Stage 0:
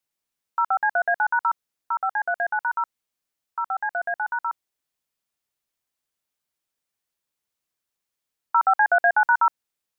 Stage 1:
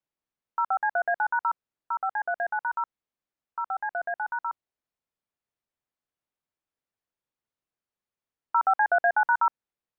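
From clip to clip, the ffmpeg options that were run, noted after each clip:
ffmpeg -i in.wav -af "lowpass=frequency=1300:poles=1,volume=-1.5dB" out.wav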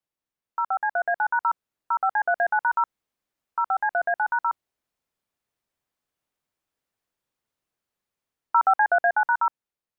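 ffmpeg -i in.wav -af "dynaudnorm=framelen=250:gausssize=13:maxgain=6.5dB" out.wav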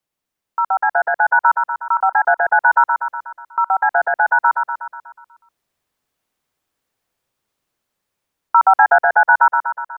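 ffmpeg -i in.wav -af "aecho=1:1:122|244|366|488|610|732|854|976:0.501|0.291|0.169|0.0978|0.0567|0.0329|0.0191|0.0111,volume=7.5dB" out.wav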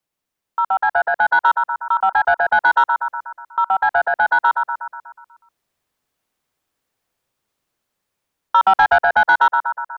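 ffmpeg -i in.wav -af "asoftclip=type=tanh:threshold=-4.5dB" out.wav

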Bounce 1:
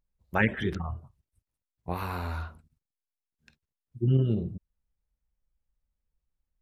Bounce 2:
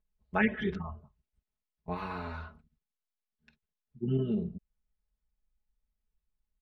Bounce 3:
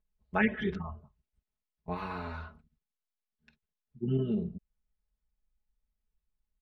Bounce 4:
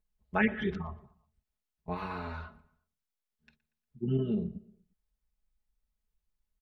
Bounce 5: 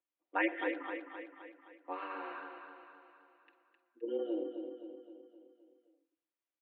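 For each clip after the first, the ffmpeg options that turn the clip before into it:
ffmpeg -i in.wav -af "lowpass=3900,aecho=1:1:4.7:0.96,volume=-5.5dB" out.wav
ffmpeg -i in.wav -af anull out.wav
ffmpeg -i in.wav -filter_complex "[0:a]asplit=2[link_01][link_02];[link_02]adelay=118,lowpass=frequency=3200:poles=1,volume=-20.5dB,asplit=2[link_03][link_04];[link_04]adelay=118,lowpass=frequency=3200:poles=1,volume=0.47,asplit=2[link_05][link_06];[link_06]adelay=118,lowpass=frequency=3200:poles=1,volume=0.47[link_07];[link_01][link_03][link_05][link_07]amix=inputs=4:normalize=0" out.wav
ffmpeg -i in.wav -af "aecho=1:1:260|520|780|1040|1300|1560:0.447|0.237|0.125|0.0665|0.0352|0.0187,highpass=frequency=220:width_type=q:width=0.5412,highpass=frequency=220:width_type=q:width=1.307,lowpass=frequency=3200:width_type=q:width=0.5176,lowpass=frequency=3200:width_type=q:width=0.7071,lowpass=frequency=3200:width_type=q:width=1.932,afreqshift=110,volume=-3.5dB" out.wav

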